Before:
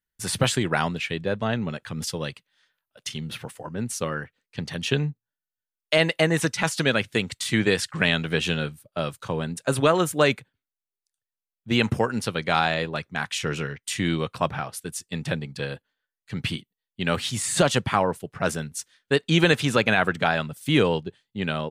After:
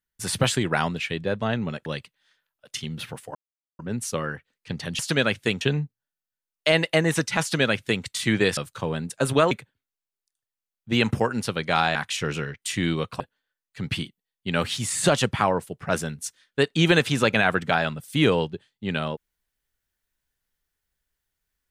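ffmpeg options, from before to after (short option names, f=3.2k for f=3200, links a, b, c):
-filter_complex "[0:a]asplit=9[a][b][c][d][e][f][g][h][i];[a]atrim=end=1.862[j];[b]atrim=start=2.178:end=3.67,asetpts=PTS-STARTPTS,afade=t=out:st=1.488:d=0.004:c=hsin,apad=pad_dur=0.44[k];[c]atrim=start=3.67:end=4.872,asetpts=PTS-STARTPTS,afade=t=in:d=0.004:c=hsin[l];[d]atrim=start=6.678:end=7.302[m];[e]atrim=start=4.868:end=7.832[n];[f]atrim=start=9.038:end=9.982[o];[g]atrim=start=10.298:end=12.742[p];[h]atrim=start=13.168:end=14.422[q];[i]atrim=start=15.728[r];[k][l]concat=n=2:v=0:a=1[s];[j][s]acrossfade=d=0.004:c1=hsin:c2=hsin[t];[t][m]acrossfade=d=0.004:c1=hsin:c2=hsin[u];[u][n]acrossfade=d=0.004:c1=hsin:c2=hsin[v];[v][o]acrossfade=d=0.004:c1=hsin:c2=hsin[w];[w][p]acrossfade=d=0.004:c1=hsin:c2=hsin[x];[x][q]acrossfade=d=0.004:c1=hsin:c2=hsin[y];[y][r]acrossfade=d=0.004:c1=hsin:c2=hsin"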